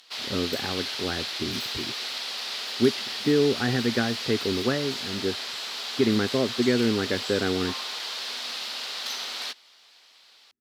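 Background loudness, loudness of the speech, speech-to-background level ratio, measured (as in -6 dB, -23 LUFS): -30.5 LUFS, -27.0 LUFS, 3.5 dB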